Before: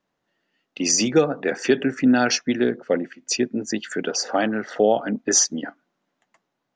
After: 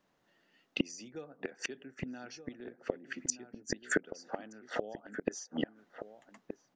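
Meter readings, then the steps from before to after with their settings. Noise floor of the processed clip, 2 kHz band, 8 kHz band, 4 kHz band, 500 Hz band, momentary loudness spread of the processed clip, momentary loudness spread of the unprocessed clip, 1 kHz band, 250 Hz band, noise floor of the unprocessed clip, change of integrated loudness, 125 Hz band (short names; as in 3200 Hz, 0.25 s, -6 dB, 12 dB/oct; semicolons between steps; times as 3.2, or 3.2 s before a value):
-75 dBFS, -12.0 dB, -19.5 dB, -19.0 dB, -18.5 dB, 15 LU, 9 LU, -19.5 dB, -18.5 dB, -78 dBFS, -18.5 dB, -15.0 dB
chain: flipped gate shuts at -18 dBFS, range -30 dB; outdoor echo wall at 210 m, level -9 dB; gain +2 dB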